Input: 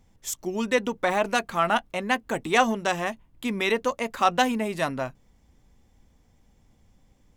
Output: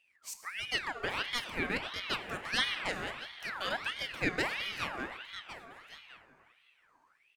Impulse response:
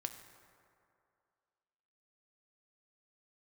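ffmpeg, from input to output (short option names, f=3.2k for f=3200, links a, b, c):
-filter_complex "[0:a]aecho=1:1:1108:0.178[a];[1:a]atrim=start_sample=2205,asetrate=37044,aresample=44100[b];[a][b]afir=irnorm=-1:irlink=0,aeval=exprs='val(0)*sin(2*PI*1800*n/s+1800*0.5/1.5*sin(2*PI*1.5*n/s))':c=same,volume=-7dB"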